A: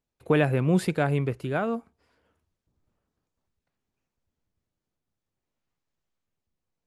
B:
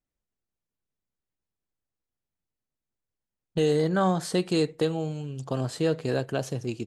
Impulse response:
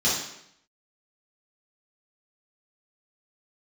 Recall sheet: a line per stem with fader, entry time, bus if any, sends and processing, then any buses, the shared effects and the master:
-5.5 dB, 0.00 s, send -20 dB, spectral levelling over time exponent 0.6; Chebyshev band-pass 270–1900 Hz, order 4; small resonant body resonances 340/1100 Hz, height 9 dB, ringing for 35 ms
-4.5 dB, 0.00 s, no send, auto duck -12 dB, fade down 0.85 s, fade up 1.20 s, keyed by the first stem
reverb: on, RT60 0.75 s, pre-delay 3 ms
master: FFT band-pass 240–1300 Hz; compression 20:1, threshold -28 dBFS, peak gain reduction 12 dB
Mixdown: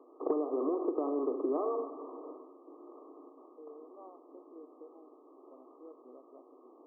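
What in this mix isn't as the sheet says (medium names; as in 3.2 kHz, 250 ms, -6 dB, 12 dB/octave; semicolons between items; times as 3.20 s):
stem A -5.5 dB -> +0.5 dB; stem B -4.5 dB -> -15.0 dB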